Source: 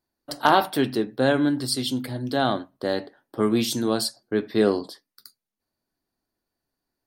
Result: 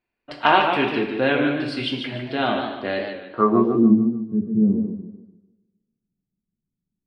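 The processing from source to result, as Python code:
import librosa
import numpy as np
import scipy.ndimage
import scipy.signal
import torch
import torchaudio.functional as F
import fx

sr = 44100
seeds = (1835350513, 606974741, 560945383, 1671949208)

y = fx.rev_double_slope(x, sr, seeds[0], early_s=0.65, late_s=1.8, knee_db=-24, drr_db=3.0)
y = fx.filter_sweep_lowpass(y, sr, from_hz=2500.0, to_hz=180.0, start_s=3.21, end_s=3.96, q=6.3)
y = fx.echo_warbled(y, sr, ms=148, feedback_pct=37, rate_hz=2.8, cents=116, wet_db=-6.5)
y = F.gain(torch.from_numpy(y), -2.0).numpy()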